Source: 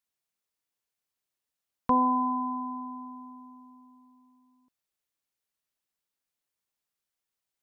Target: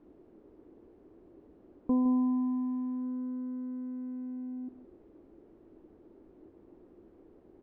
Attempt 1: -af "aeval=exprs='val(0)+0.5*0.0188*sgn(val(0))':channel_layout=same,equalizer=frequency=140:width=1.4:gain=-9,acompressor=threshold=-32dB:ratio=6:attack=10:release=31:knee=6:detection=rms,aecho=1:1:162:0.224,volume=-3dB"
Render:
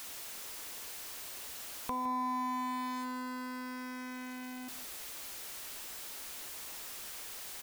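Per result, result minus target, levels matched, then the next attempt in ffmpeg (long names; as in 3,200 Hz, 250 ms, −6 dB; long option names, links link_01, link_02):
downward compressor: peak gain reduction +11 dB; 250 Hz band −4.0 dB
-af "aeval=exprs='val(0)+0.5*0.0188*sgn(val(0))':channel_layout=same,equalizer=frequency=140:width=1.4:gain=-9,aecho=1:1:162:0.224,volume=-3dB"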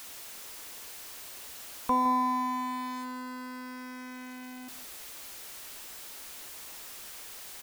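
250 Hz band −3.5 dB
-af "aeval=exprs='val(0)+0.5*0.0188*sgn(val(0))':channel_layout=same,lowpass=frequency=340:width_type=q:width=3.8,equalizer=frequency=140:width=1.4:gain=-9,aecho=1:1:162:0.224,volume=-3dB"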